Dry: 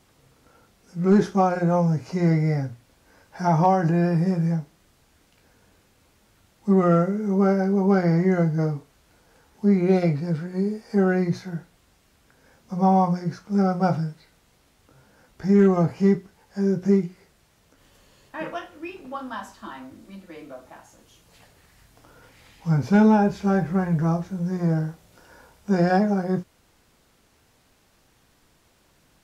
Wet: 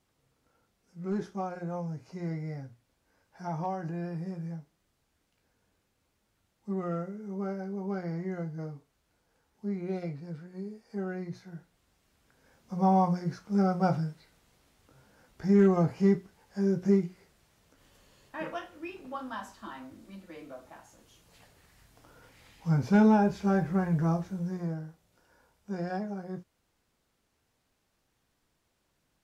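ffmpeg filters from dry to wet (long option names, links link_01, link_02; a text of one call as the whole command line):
ffmpeg -i in.wav -af "volume=-5dB,afade=type=in:start_time=11.32:duration=1.72:silence=0.316228,afade=type=out:start_time=24.3:duration=0.48:silence=0.334965" out.wav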